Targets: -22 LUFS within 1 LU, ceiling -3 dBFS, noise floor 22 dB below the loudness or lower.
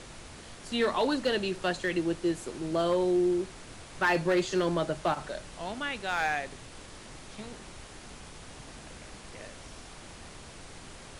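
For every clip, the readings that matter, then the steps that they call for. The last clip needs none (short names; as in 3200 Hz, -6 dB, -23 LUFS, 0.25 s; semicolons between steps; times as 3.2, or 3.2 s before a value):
clipped 0.5%; flat tops at -20.0 dBFS; noise floor -48 dBFS; noise floor target -52 dBFS; loudness -29.5 LUFS; peak -20.0 dBFS; loudness target -22.0 LUFS
-> clip repair -20 dBFS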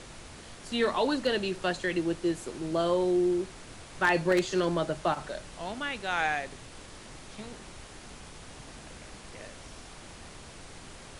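clipped 0.0%; noise floor -48 dBFS; noise floor target -51 dBFS
-> noise print and reduce 6 dB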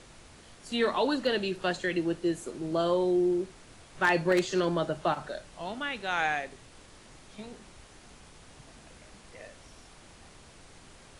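noise floor -54 dBFS; loudness -29.5 LUFS; peak -11.5 dBFS; loudness target -22.0 LUFS
-> gain +7.5 dB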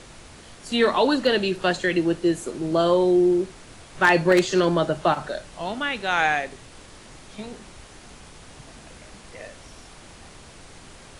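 loudness -22.0 LUFS; peak -4.0 dBFS; noise floor -46 dBFS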